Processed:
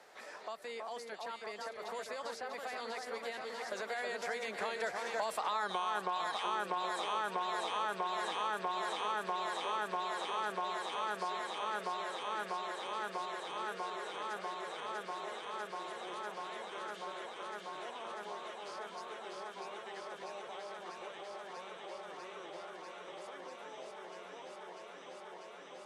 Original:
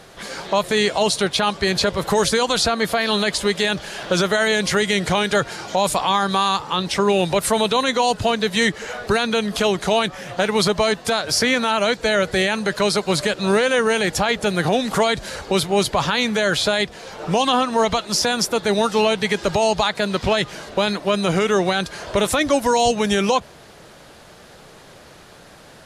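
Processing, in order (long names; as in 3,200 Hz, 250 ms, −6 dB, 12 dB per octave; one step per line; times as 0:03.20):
fade-out on the ending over 6.23 s
source passing by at 0:05.69, 33 m/s, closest 2.4 metres
parametric band 7,000 Hz +8.5 dB 1.9 octaves
delay that swaps between a low-pass and a high-pass 322 ms, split 1,900 Hz, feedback 90%, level −3 dB
downward compressor 6 to 1, threshold −33 dBFS, peak gain reduction 15.5 dB
three-way crossover with the lows and the highs turned down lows −23 dB, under 340 Hz, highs −13 dB, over 2,400 Hz
multiband upward and downward compressor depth 70%
level +5 dB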